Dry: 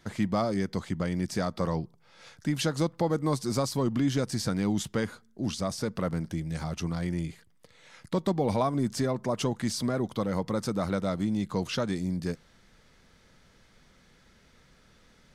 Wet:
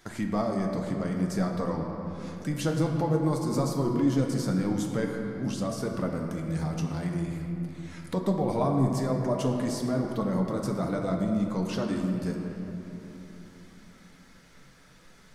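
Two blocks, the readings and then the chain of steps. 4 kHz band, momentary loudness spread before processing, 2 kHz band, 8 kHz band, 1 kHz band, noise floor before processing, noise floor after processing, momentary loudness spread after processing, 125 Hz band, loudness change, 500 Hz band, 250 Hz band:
-5.5 dB, 6 LU, -1.5 dB, -3.0 dB, 0.0 dB, -61 dBFS, -54 dBFS, 10 LU, +2.0 dB, +1.0 dB, +1.0 dB, +2.0 dB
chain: peaking EQ 3.5 kHz -6.5 dB 1.9 oct; hum notches 50/100 Hz; flange 0.51 Hz, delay 2.5 ms, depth 5.1 ms, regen +49%; simulated room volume 130 m³, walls hard, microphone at 0.33 m; tape noise reduction on one side only encoder only; trim +2.5 dB

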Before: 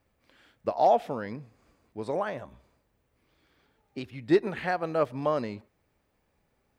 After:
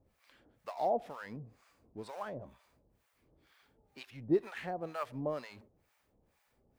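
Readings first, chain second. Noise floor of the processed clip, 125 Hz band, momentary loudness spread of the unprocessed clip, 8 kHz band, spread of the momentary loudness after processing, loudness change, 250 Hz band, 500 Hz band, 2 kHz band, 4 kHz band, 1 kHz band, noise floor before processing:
-76 dBFS, -7.5 dB, 19 LU, no reading, 20 LU, -9.5 dB, -7.5 dB, -9.5 dB, -10.5 dB, -8.5 dB, -10.5 dB, -74 dBFS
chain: companding laws mixed up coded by mu; harmonic tremolo 2.1 Hz, depth 100%, crossover 750 Hz; trim -5.5 dB

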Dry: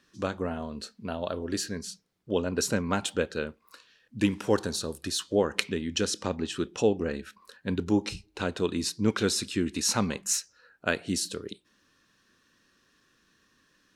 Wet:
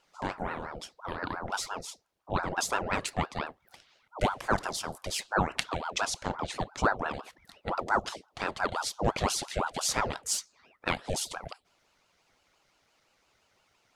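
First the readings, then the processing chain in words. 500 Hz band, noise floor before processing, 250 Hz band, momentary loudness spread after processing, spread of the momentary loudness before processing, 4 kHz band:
-5.5 dB, -68 dBFS, -9.5 dB, 12 LU, 12 LU, -3.0 dB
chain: ring modulator with a swept carrier 730 Hz, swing 65%, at 5.8 Hz

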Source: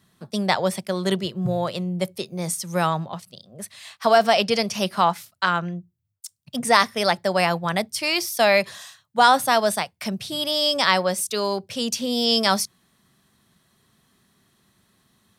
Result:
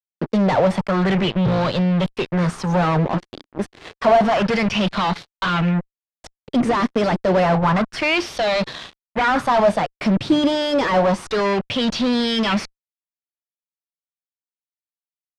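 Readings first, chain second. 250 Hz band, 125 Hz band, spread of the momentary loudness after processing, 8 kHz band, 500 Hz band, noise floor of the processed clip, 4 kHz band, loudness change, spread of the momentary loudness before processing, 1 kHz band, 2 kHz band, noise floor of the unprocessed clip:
+8.0 dB, +8.5 dB, 8 LU, -9.5 dB, +3.5 dB, under -85 dBFS, -2.5 dB, +2.5 dB, 12 LU, +0.5 dB, +0.5 dB, -67 dBFS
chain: dynamic bell 570 Hz, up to -4 dB, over -28 dBFS, Q 1.3; fuzz box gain 36 dB, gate -39 dBFS; tape spacing loss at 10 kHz 28 dB; sweeping bell 0.29 Hz 290–4100 Hz +9 dB; trim -2 dB

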